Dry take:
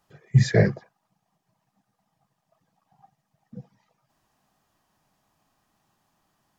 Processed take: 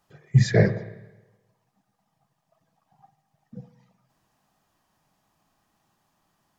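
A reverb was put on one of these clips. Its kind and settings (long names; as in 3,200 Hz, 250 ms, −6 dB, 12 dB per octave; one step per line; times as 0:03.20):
spring reverb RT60 1.1 s, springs 47/53 ms, chirp 30 ms, DRR 12.5 dB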